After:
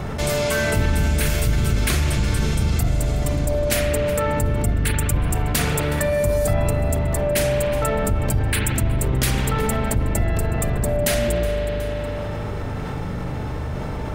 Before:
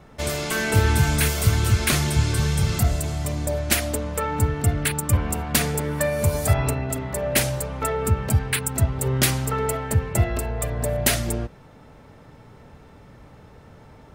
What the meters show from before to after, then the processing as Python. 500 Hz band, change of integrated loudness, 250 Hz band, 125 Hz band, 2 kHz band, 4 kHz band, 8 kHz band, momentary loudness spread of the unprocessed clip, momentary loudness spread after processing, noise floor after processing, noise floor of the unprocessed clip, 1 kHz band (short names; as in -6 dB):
+5.0 dB, +1.0 dB, +2.5 dB, +1.0 dB, +1.0 dB, -0.5 dB, -1.0 dB, 7 LU, 8 LU, -27 dBFS, -48 dBFS, +1.0 dB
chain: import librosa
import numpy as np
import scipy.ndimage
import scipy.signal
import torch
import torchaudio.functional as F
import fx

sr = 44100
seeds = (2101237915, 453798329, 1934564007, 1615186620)

p1 = fx.octave_divider(x, sr, octaves=1, level_db=1.0)
p2 = p1 + fx.echo_feedback(p1, sr, ms=368, feedback_pct=26, wet_db=-21.5, dry=0)
p3 = fx.rev_spring(p2, sr, rt60_s=2.1, pass_ms=(39,), chirp_ms=50, drr_db=2.5)
p4 = fx.env_flatten(p3, sr, amount_pct=70)
y = p4 * 10.0 ** (-8.0 / 20.0)